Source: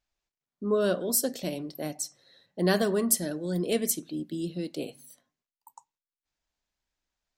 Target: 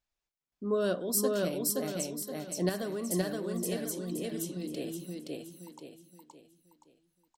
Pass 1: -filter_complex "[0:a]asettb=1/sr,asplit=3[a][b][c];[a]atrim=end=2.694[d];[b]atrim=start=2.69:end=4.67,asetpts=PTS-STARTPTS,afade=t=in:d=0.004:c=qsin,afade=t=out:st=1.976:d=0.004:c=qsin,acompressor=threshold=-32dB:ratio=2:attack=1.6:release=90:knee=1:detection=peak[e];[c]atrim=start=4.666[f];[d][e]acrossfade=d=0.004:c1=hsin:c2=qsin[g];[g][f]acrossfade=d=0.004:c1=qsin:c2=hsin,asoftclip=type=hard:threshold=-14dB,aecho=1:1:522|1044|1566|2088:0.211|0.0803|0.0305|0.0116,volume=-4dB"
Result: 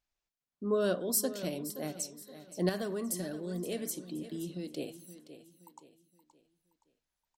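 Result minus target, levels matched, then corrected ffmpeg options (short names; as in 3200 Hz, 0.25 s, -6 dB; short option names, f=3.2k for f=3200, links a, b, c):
echo-to-direct -12 dB
-filter_complex "[0:a]asettb=1/sr,asplit=3[a][b][c];[a]atrim=end=2.694[d];[b]atrim=start=2.69:end=4.67,asetpts=PTS-STARTPTS,afade=t=in:d=0.004:c=qsin,afade=t=out:st=1.976:d=0.004:c=qsin,acompressor=threshold=-32dB:ratio=2:attack=1.6:release=90:knee=1:detection=peak[e];[c]atrim=start=4.666[f];[d][e]acrossfade=d=0.004:c1=hsin:c2=qsin[g];[g][f]acrossfade=d=0.004:c1=qsin:c2=hsin,asoftclip=type=hard:threshold=-14dB,aecho=1:1:522|1044|1566|2088|2610:0.841|0.32|0.121|0.0462|0.0175,volume=-4dB"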